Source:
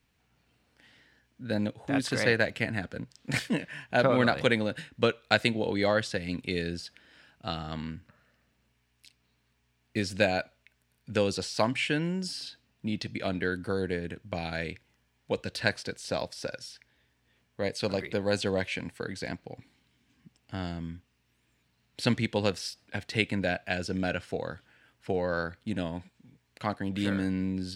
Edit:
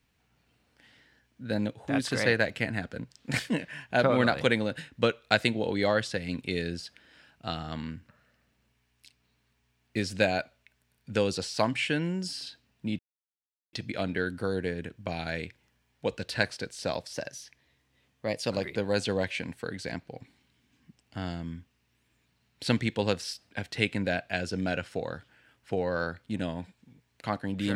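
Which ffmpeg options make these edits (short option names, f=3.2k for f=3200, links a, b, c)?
-filter_complex "[0:a]asplit=4[a][b][c][d];[a]atrim=end=12.99,asetpts=PTS-STARTPTS,afade=t=out:st=12.986:d=0.004:c=hsin,apad=pad_dur=0.74[e];[b]atrim=start=12.99:end=16.394,asetpts=PTS-STARTPTS,afade=t=in:d=0.004:c=hsin[f];[c]atrim=start=16.39:end=17.87,asetpts=PTS-STARTPTS,asetrate=47628,aresample=44100,atrim=end_sample=60433,asetpts=PTS-STARTPTS[g];[d]atrim=start=17.866[h];[e][f]concat=n=2:v=0:a=1[i];[i][g]acrossfade=d=0.004:c1=hsin:c2=hsin[j];[j][h]acrossfade=d=0.004:c1=hsin:c2=hsin"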